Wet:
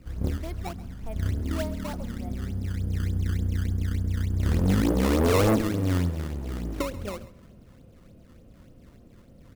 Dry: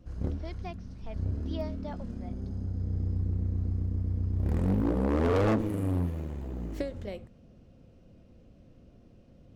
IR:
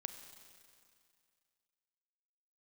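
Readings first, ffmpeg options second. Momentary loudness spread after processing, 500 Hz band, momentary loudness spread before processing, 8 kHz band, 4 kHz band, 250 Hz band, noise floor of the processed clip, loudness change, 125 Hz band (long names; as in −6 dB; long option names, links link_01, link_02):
13 LU, +4.0 dB, 13 LU, can't be measured, +12.0 dB, +4.0 dB, −52 dBFS, +4.0 dB, +4.0 dB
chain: -filter_complex "[0:a]acrusher=samples=16:mix=1:aa=0.000001:lfo=1:lforange=25.6:lforate=3.4,aecho=1:1:135:0.133,asplit=2[link_01][link_02];[1:a]atrim=start_sample=2205,lowpass=2000[link_03];[link_02][link_03]afir=irnorm=-1:irlink=0,volume=-10dB[link_04];[link_01][link_04]amix=inputs=2:normalize=0,volume=2.5dB"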